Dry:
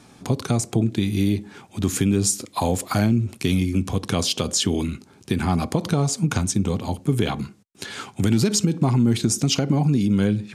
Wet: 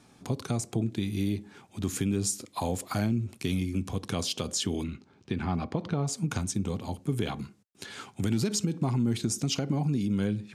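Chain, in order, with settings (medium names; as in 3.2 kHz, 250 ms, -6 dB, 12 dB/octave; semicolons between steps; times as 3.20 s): 4.83–6.06 s: low-pass 4.8 kHz -> 2.9 kHz 12 dB/octave; trim -8.5 dB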